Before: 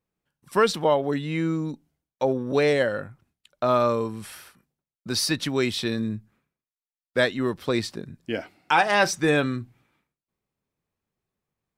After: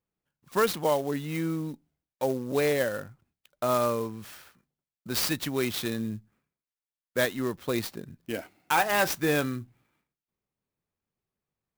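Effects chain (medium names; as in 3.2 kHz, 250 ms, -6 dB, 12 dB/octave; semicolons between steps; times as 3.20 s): dynamic bell 8.3 kHz, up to +4 dB, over -44 dBFS, Q 0.71; sampling jitter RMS 0.033 ms; trim -4.5 dB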